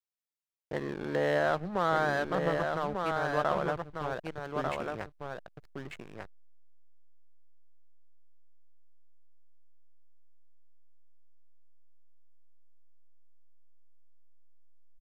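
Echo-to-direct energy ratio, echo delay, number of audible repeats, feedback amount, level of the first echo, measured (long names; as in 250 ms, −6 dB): −4.5 dB, 1,195 ms, 1, repeats not evenly spaced, −4.5 dB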